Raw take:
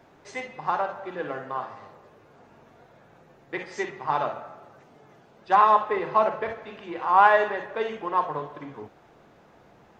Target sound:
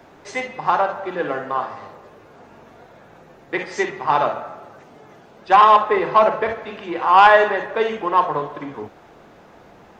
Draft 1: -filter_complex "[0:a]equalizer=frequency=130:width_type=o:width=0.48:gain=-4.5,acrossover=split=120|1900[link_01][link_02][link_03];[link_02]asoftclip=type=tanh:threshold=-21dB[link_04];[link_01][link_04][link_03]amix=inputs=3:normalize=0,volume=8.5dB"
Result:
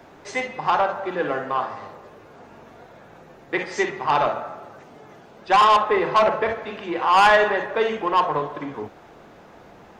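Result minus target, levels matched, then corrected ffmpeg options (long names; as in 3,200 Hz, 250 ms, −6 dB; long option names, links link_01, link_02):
soft clipping: distortion +8 dB
-filter_complex "[0:a]equalizer=frequency=130:width_type=o:width=0.48:gain=-4.5,acrossover=split=120|1900[link_01][link_02][link_03];[link_02]asoftclip=type=tanh:threshold=-12.5dB[link_04];[link_01][link_04][link_03]amix=inputs=3:normalize=0,volume=8.5dB"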